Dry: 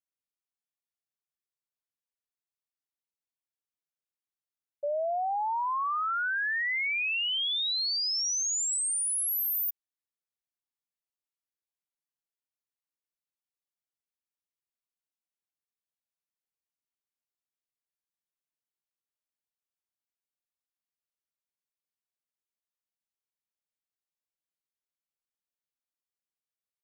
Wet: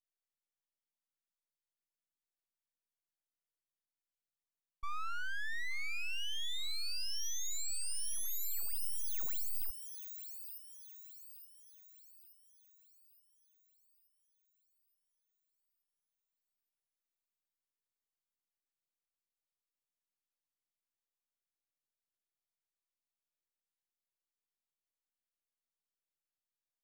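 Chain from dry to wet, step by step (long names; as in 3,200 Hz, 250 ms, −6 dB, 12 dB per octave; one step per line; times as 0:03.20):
full-wave rectification
delay with a high-pass on its return 874 ms, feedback 48%, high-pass 3,300 Hz, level −6.5 dB
level −5 dB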